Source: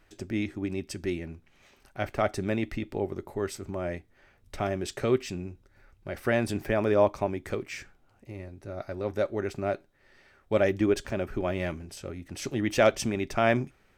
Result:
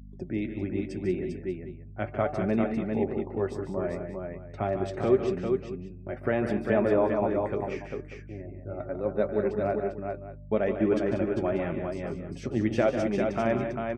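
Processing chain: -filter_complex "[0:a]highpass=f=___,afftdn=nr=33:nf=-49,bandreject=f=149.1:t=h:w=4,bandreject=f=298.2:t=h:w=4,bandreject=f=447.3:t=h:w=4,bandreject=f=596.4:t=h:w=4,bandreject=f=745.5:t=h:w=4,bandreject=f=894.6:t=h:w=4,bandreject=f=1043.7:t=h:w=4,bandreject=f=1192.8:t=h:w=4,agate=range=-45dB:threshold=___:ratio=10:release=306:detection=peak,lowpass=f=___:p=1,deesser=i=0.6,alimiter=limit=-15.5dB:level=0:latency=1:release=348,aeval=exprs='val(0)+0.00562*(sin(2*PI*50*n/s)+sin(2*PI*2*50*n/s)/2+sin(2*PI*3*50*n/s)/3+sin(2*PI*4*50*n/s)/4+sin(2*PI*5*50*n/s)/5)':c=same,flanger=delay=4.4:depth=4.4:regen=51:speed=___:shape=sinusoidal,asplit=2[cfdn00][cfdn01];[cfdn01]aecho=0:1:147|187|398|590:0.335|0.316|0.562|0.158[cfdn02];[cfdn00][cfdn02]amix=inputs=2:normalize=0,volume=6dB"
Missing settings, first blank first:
110, -50dB, 1100, 0.75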